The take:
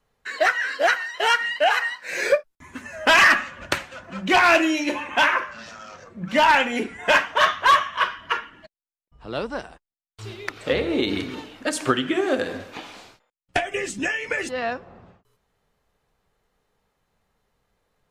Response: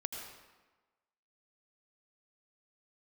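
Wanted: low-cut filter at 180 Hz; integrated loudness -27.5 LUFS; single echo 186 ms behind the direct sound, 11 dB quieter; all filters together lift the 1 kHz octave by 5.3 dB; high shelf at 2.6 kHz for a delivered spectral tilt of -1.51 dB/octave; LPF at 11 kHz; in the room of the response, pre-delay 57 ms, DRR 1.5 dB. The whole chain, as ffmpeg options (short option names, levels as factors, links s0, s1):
-filter_complex "[0:a]highpass=180,lowpass=11000,equalizer=f=1000:t=o:g=5.5,highshelf=f=2600:g=5.5,aecho=1:1:186:0.282,asplit=2[s0][s1];[1:a]atrim=start_sample=2205,adelay=57[s2];[s1][s2]afir=irnorm=-1:irlink=0,volume=0.794[s3];[s0][s3]amix=inputs=2:normalize=0,volume=0.237"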